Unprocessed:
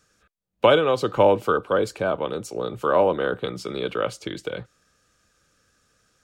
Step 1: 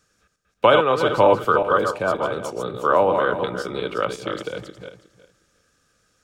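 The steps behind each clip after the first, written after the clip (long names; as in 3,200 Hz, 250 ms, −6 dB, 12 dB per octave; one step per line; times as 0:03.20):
feedback delay that plays each chunk backwards 181 ms, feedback 41%, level −5 dB
dynamic equaliser 1,200 Hz, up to +6 dB, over −34 dBFS, Q 1.2
level −1 dB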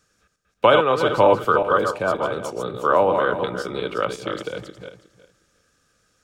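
no processing that can be heard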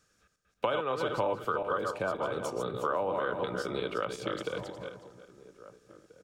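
slap from a distant wall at 280 metres, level −21 dB
downward compressor 4 to 1, threshold −24 dBFS, peak gain reduction 12.5 dB
level −4.5 dB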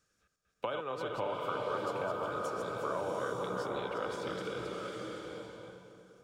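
slow-attack reverb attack 810 ms, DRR 0 dB
level −6.5 dB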